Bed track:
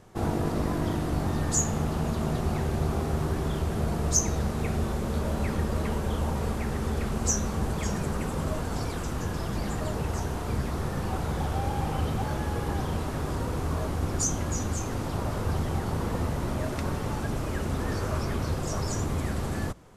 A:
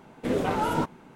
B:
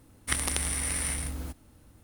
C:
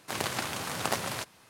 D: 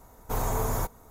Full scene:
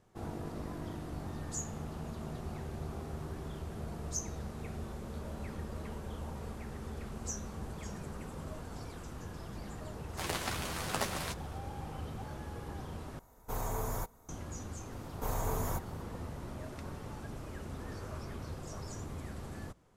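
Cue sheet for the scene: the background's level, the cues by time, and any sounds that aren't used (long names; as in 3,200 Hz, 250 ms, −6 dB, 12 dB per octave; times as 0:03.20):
bed track −13.5 dB
0:10.09: mix in C −5.5 dB + double-tracking delay 12 ms −5 dB
0:13.19: overwrite with D −8 dB
0:14.92: mix in D −7 dB
not used: A, B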